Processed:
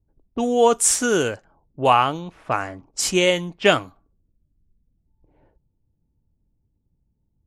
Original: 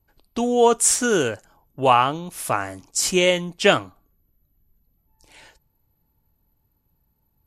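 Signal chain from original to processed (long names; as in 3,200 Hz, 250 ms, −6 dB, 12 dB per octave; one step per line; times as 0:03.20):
low-pass that shuts in the quiet parts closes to 380 Hz, open at −18 dBFS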